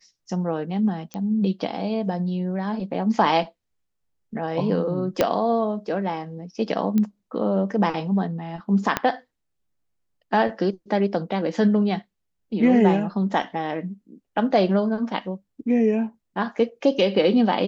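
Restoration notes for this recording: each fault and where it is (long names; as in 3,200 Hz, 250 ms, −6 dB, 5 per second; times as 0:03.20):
0:01.14: click −18 dBFS
0:05.21: click −5 dBFS
0:06.98: click −12 dBFS
0:08.97: click −6 dBFS
0:13.42: drop-out 3 ms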